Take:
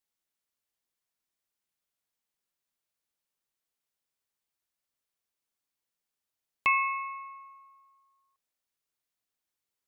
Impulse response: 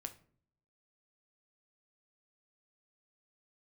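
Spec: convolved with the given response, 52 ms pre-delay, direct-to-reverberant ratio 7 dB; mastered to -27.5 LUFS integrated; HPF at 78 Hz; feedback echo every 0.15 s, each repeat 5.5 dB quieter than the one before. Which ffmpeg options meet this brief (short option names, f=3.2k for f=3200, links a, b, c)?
-filter_complex "[0:a]highpass=78,aecho=1:1:150|300|450|600|750|900|1050:0.531|0.281|0.149|0.079|0.0419|0.0222|0.0118,asplit=2[a][b];[1:a]atrim=start_sample=2205,adelay=52[c];[b][c]afir=irnorm=-1:irlink=0,volume=-3.5dB[d];[a][d]amix=inputs=2:normalize=0,volume=1dB"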